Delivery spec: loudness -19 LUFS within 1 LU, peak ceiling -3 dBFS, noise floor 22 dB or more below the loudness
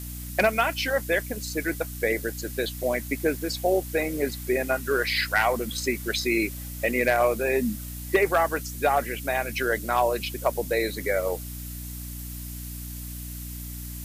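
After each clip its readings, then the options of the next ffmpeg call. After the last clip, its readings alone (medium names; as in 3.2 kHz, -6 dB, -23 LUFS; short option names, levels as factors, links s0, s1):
hum 60 Hz; highest harmonic 300 Hz; hum level -35 dBFS; noise floor -36 dBFS; noise floor target -49 dBFS; loudness -26.5 LUFS; peak level -11.0 dBFS; loudness target -19.0 LUFS
-> -af "bandreject=f=60:t=h:w=6,bandreject=f=120:t=h:w=6,bandreject=f=180:t=h:w=6,bandreject=f=240:t=h:w=6,bandreject=f=300:t=h:w=6"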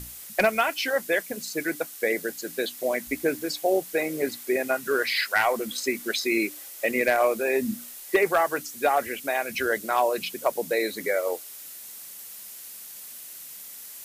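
hum not found; noise floor -42 dBFS; noise floor target -48 dBFS
-> -af "afftdn=nr=6:nf=-42"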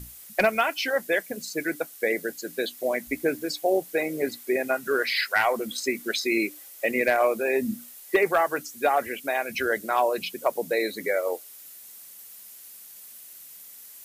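noise floor -46 dBFS; noise floor target -48 dBFS
-> -af "afftdn=nr=6:nf=-46"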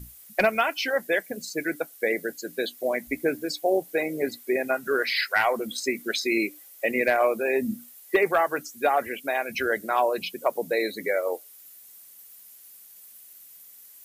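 noise floor -50 dBFS; loudness -26.0 LUFS; peak level -11.5 dBFS; loudness target -19.0 LUFS
-> -af "volume=2.24"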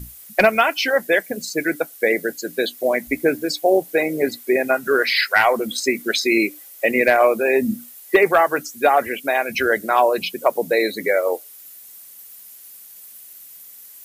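loudness -19.0 LUFS; peak level -4.5 dBFS; noise floor -43 dBFS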